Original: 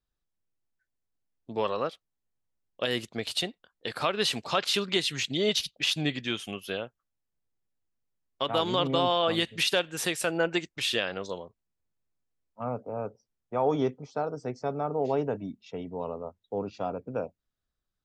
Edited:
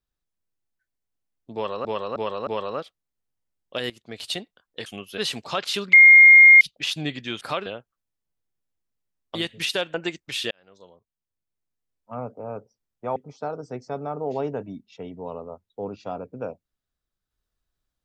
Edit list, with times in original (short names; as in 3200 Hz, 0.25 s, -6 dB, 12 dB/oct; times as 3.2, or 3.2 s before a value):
1.54–1.85 loop, 4 plays
2.97–3.39 fade in, from -16.5 dB
3.93–4.18 swap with 6.41–6.73
4.93–5.61 bleep 2130 Hz -6.5 dBFS
8.42–9.33 cut
9.92–10.43 cut
11–12.62 fade in
13.65–13.9 cut